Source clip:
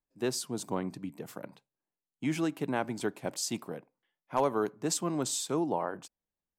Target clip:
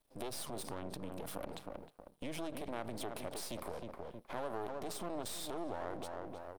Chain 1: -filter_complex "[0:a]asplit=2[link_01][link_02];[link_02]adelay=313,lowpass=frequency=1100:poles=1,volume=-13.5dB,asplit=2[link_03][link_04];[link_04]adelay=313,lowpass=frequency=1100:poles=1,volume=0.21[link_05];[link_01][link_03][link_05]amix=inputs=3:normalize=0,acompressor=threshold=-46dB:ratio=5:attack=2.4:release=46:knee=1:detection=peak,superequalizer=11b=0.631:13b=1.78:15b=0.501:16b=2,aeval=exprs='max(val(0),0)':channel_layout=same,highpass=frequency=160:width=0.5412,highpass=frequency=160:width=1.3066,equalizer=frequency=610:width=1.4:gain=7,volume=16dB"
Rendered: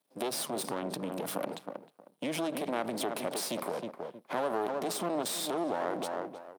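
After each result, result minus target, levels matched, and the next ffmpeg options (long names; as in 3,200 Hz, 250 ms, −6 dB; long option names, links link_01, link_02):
downward compressor: peak gain reduction −9 dB; 125 Hz band −6.0 dB
-filter_complex "[0:a]asplit=2[link_01][link_02];[link_02]adelay=313,lowpass=frequency=1100:poles=1,volume=-13.5dB,asplit=2[link_03][link_04];[link_04]adelay=313,lowpass=frequency=1100:poles=1,volume=0.21[link_05];[link_01][link_03][link_05]amix=inputs=3:normalize=0,acompressor=threshold=-57.5dB:ratio=5:attack=2.4:release=46:knee=1:detection=peak,superequalizer=11b=0.631:13b=1.78:15b=0.501:16b=2,aeval=exprs='max(val(0),0)':channel_layout=same,highpass=frequency=160:width=0.5412,highpass=frequency=160:width=1.3066,equalizer=frequency=610:width=1.4:gain=7,volume=16dB"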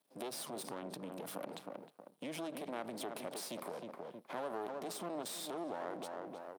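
125 Hz band −5.5 dB
-filter_complex "[0:a]asplit=2[link_01][link_02];[link_02]adelay=313,lowpass=frequency=1100:poles=1,volume=-13.5dB,asplit=2[link_03][link_04];[link_04]adelay=313,lowpass=frequency=1100:poles=1,volume=0.21[link_05];[link_01][link_03][link_05]amix=inputs=3:normalize=0,acompressor=threshold=-57.5dB:ratio=5:attack=2.4:release=46:knee=1:detection=peak,superequalizer=11b=0.631:13b=1.78:15b=0.501:16b=2,aeval=exprs='max(val(0),0)':channel_layout=same,equalizer=frequency=610:width=1.4:gain=7,volume=16dB"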